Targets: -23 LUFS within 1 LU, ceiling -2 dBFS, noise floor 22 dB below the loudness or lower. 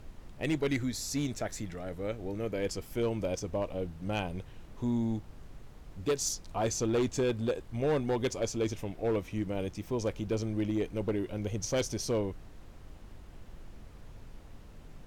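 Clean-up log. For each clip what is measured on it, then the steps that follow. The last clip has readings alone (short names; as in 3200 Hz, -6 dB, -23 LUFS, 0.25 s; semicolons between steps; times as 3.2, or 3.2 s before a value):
clipped 1.1%; flat tops at -24.0 dBFS; noise floor -51 dBFS; noise floor target -56 dBFS; loudness -33.5 LUFS; peak -24.0 dBFS; loudness target -23.0 LUFS
-> clip repair -24 dBFS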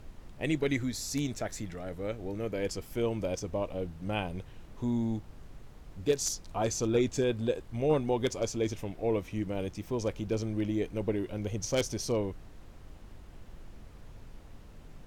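clipped 0.0%; noise floor -51 dBFS; noise floor target -55 dBFS
-> noise print and reduce 6 dB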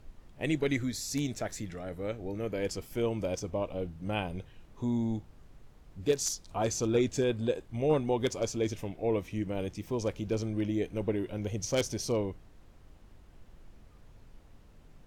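noise floor -56 dBFS; loudness -32.5 LUFS; peak -15.0 dBFS; loudness target -23.0 LUFS
-> gain +9.5 dB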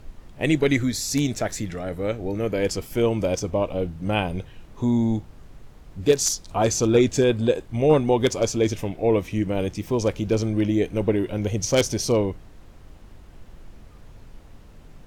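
loudness -23.0 LUFS; peak -5.5 dBFS; noise floor -47 dBFS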